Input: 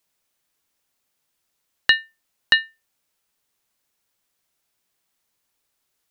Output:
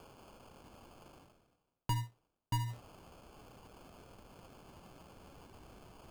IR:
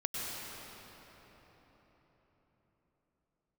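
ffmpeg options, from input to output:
-af "asubboost=boost=9.5:cutoff=230,areverse,acompressor=threshold=0.00112:ratio=4,areverse,acrusher=samples=23:mix=1:aa=0.000001,volume=7.5"

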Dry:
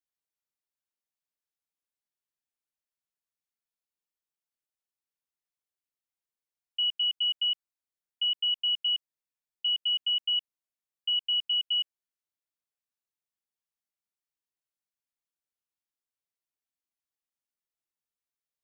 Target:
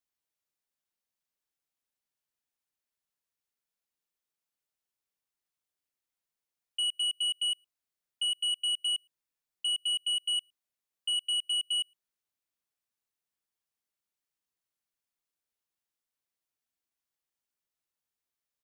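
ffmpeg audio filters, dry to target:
-filter_complex "[0:a]aeval=exprs='0.075*sin(PI/2*1.41*val(0)/0.075)':c=same,asplit=2[s0][s1];[s1]adelay=110,highpass=300,lowpass=3400,asoftclip=type=hard:threshold=0.0251,volume=0.0316[s2];[s0][s2]amix=inputs=2:normalize=0,volume=0.596"

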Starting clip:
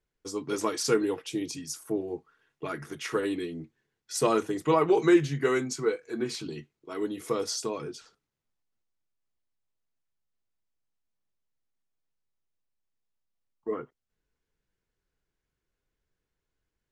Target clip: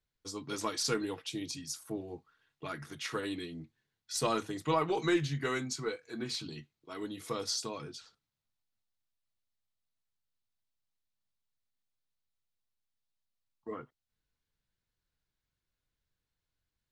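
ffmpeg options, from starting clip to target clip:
-af "equalizer=f=100:t=o:w=0.67:g=5,equalizer=f=400:t=o:w=0.67:g=-7,equalizer=f=4000:t=o:w=0.67:g=7,aeval=exprs='0.282*(cos(1*acos(clip(val(0)/0.282,-1,1)))-cos(1*PI/2))+0.00282*(cos(6*acos(clip(val(0)/0.282,-1,1)))-cos(6*PI/2))':c=same,volume=0.596"

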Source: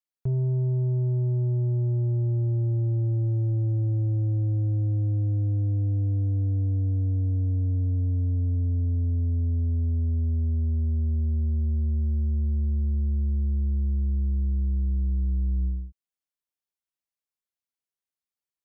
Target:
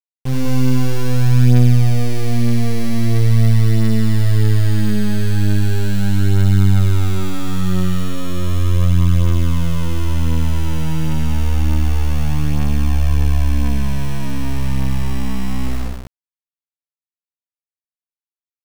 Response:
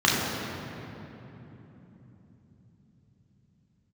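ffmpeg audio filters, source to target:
-filter_complex "[0:a]adynamicequalizer=threshold=0.0112:dfrequency=160:dqfactor=0.77:tfrequency=160:tqfactor=0.77:attack=5:release=100:ratio=0.375:range=4:mode=boostabove:tftype=bell,acrusher=bits=3:dc=4:mix=0:aa=0.000001,asplit=2[s0][s1];[s1]aecho=0:1:81.63|195.3:0.794|0.708[s2];[s0][s2]amix=inputs=2:normalize=0,volume=1.78"

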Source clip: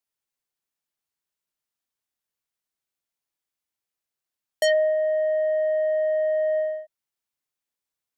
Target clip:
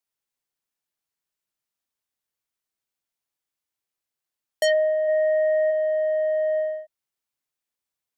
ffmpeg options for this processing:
-filter_complex "[0:a]asplit=3[s0][s1][s2];[s0]afade=t=out:st=5.07:d=0.02[s3];[s1]equalizer=f=500:t=o:w=1:g=8,equalizer=f=1000:t=o:w=1:g=-11,equalizer=f=2000:t=o:w=1:g=9,equalizer=f=4000:t=o:w=1:g=-7,equalizer=f=8000:t=o:w=1:g=5,afade=t=in:st=5.07:d=0.02,afade=t=out:st=5.7:d=0.02[s4];[s2]afade=t=in:st=5.7:d=0.02[s5];[s3][s4][s5]amix=inputs=3:normalize=0"

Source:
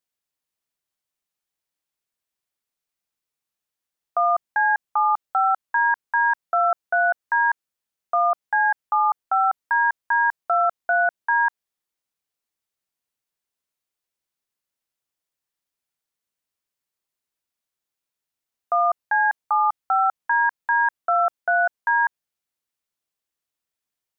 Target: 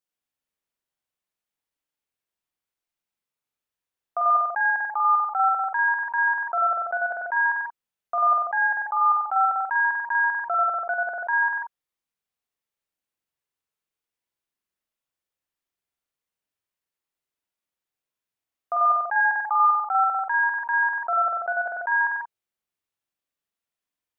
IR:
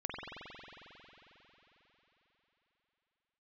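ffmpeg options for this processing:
-filter_complex "[0:a]asplit=3[s0][s1][s2];[s0]afade=t=out:st=19.15:d=0.02[s3];[s1]lowshelf=f=550:t=q:w=1.5:g=-10.5,afade=t=in:st=19.15:d=0.02,afade=t=out:st=19.65:d=0.02[s4];[s2]afade=t=in:st=19.65:d=0.02[s5];[s3][s4][s5]amix=inputs=3:normalize=0[s6];[1:a]atrim=start_sample=2205,afade=t=out:st=0.23:d=0.01,atrim=end_sample=10584[s7];[s6][s7]afir=irnorm=-1:irlink=0,volume=0.794"

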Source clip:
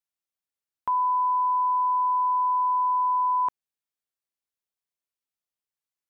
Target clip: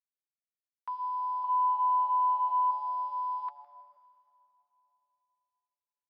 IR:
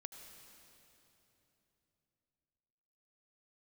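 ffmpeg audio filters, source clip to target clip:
-filter_complex "[0:a]highpass=1000,asettb=1/sr,asplit=3[s0][s1][s2];[s0]atrim=end=1.444[s3];[s1]atrim=start=1.44:end=2.71,asetpts=PTS-STARTPTS,afade=t=in:d=0.004:c=qsin,afade=t=out:st=1.266:d=0.004:c=qsin,acontrast=80[s4];[s2]atrim=start=2.706[s5];[s3][s4]acrossfade=d=0.004:c1=hsin:c2=qsin[s6];[s6][s5]acrossfade=d=0.004:c1=qsin:c2=hsin,acrusher=bits=8:mix=0:aa=0.000001,flanger=delay=1.3:depth=4:regen=-52:speed=0.41:shape=triangular,asplit=4[s7][s8][s9][s10];[s8]adelay=160,afreqshift=-140,volume=0.0944[s11];[s9]adelay=320,afreqshift=-280,volume=0.0351[s12];[s10]adelay=480,afreqshift=-420,volume=0.0129[s13];[s7][s11][s12][s13]amix=inputs=4:normalize=0,asplit=2[s14][s15];[1:a]atrim=start_sample=2205[s16];[s15][s16]afir=irnorm=-1:irlink=0,volume=0.944[s17];[s14][s17]amix=inputs=2:normalize=0,aresample=11025,aresample=44100,volume=0.422"

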